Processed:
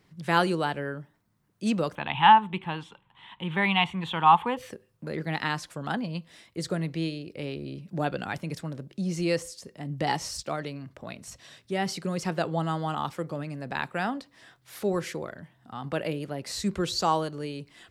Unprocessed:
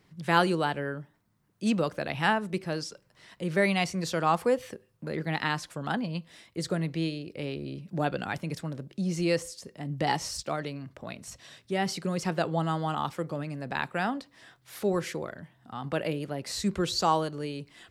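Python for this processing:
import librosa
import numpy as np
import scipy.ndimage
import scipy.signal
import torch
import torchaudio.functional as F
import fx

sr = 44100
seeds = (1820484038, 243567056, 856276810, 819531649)

y = fx.curve_eq(x, sr, hz=(230.0, 340.0, 620.0, 880.0, 1400.0, 2200.0, 3400.0, 4900.0, 7400.0), db=(0, -5, -10, 15, 0, 3, 11, -25, -15), at=(1.95, 4.57))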